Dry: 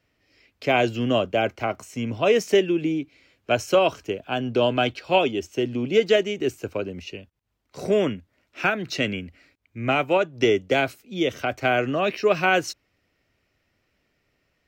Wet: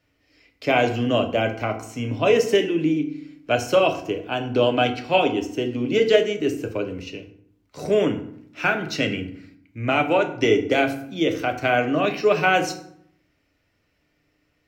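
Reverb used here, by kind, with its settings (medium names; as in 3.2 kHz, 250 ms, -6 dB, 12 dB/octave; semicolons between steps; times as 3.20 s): FDN reverb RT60 0.66 s, low-frequency decay 1.45×, high-frequency decay 0.65×, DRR 4.5 dB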